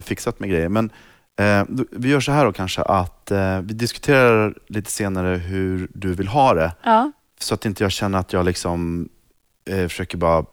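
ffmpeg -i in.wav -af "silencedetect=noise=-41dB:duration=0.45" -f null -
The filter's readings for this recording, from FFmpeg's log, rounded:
silence_start: 9.08
silence_end: 9.67 | silence_duration: 0.59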